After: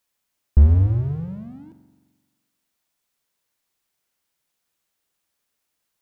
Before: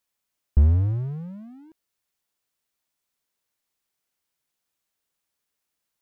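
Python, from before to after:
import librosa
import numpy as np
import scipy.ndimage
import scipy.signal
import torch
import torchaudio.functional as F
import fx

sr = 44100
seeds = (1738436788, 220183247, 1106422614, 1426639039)

y = fx.rev_spring(x, sr, rt60_s=1.3, pass_ms=(43,), chirp_ms=25, drr_db=9.5)
y = y * librosa.db_to_amplitude(4.0)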